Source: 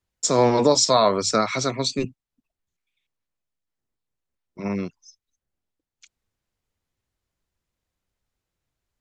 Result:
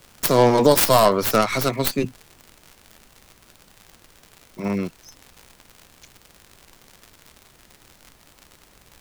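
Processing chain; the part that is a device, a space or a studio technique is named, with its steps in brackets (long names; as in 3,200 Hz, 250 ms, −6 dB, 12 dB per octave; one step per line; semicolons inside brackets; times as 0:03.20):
record under a worn stylus (stylus tracing distortion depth 0.47 ms; surface crackle 110 per second −34 dBFS; pink noise bed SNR 30 dB)
level +2.5 dB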